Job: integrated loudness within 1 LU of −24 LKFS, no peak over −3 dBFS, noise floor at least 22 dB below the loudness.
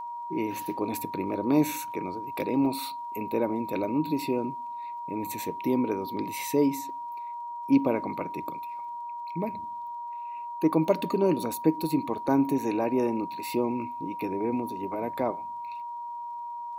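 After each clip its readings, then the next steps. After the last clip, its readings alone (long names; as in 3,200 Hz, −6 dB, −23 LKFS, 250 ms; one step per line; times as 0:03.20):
crackle rate 16 per second; interfering tone 950 Hz; level of the tone −34 dBFS; integrated loudness −29.5 LKFS; sample peak −9.0 dBFS; target loudness −24.0 LKFS
→ click removal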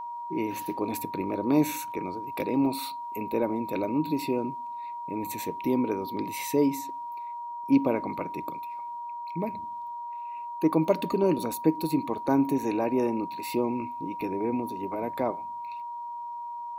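crackle rate 0.30 per second; interfering tone 950 Hz; level of the tone −34 dBFS
→ notch filter 950 Hz, Q 30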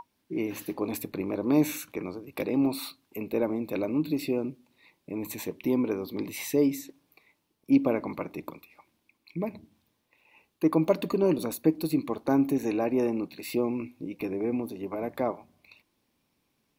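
interfering tone none found; integrated loudness −29.5 LKFS; sample peak −9.5 dBFS; target loudness −24.0 LKFS
→ level +5.5 dB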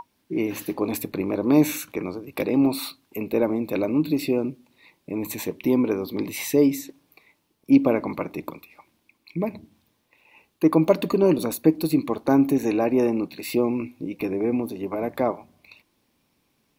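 integrated loudness −24.0 LKFS; sample peak −4.0 dBFS; background noise floor −70 dBFS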